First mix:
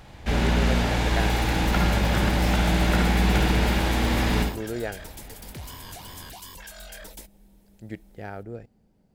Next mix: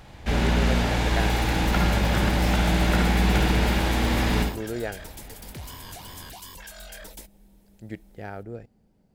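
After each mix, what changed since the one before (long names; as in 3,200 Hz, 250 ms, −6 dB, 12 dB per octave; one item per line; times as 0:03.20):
nothing changed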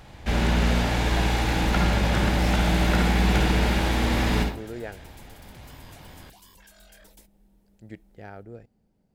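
speech −5.0 dB
second sound −11.0 dB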